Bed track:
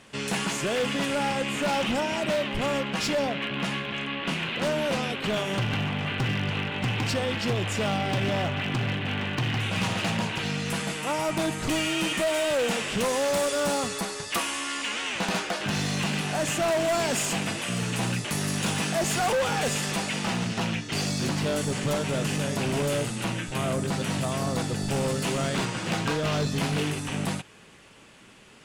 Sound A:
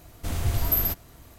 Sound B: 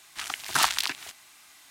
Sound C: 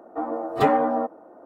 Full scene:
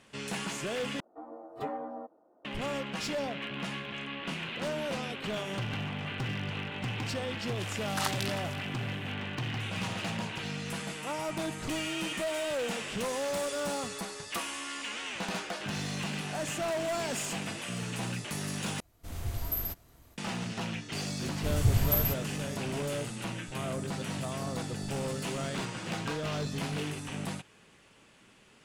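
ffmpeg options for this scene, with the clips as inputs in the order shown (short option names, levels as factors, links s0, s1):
-filter_complex "[1:a]asplit=2[s0][s1];[0:a]volume=0.422[s2];[3:a]equalizer=f=1700:w=1.5:g=-3[s3];[2:a]aecho=1:1:325:0.178[s4];[s0]dynaudnorm=f=190:g=3:m=3.16[s5];[s1]equalizer=f=130:w=1.5:g=11.5[s6];[s2]asplit=3[s7][s8][s9];[s7]atrim=end=1.004[s10];[s3]atrim=end=1.45,asetpts=PTS-STARTPTS,volume=0.141[s11];[s8]atrim=start=2.446:end=18.804[s12];[s5]atrim=end=1.38,asetpts=PTS-STARTPTS,volume=0.126[s13];[s9]atrim=start=20.176[s14];[s4]atrim=end=1.7,asetpts=PTS-STARTPTS,volume=0.316,afade=t=in:d=0.004:c=hsin,afade=t=out:st=1.696:d=0.004:c=hsin,adelay=7420[s15];[s6]atrim=end=1.38,asetpts=PTS-STARTPTS,volume=0.562,afade=t=in:d=0.004:c=hsin,afade=t=out:st=1.376:d=0.004:c=hsin,adelay=21200[s16];[s10][s11]acrossfade=d=0.004:c1=hsin:c2=hsin[s17];[s17][s12]acrossfade=d=0.004:c1=hsin:c2=hsin[s18];[s18][s13]acrossfade=d=0.004:c1=hsin:c2=hsin[s19];[s19][s14]acrossfade=d=0.004:c1=hsin:c2=hsin[s20];[s20][s15][s16]amix=inputs=3:normalize=0"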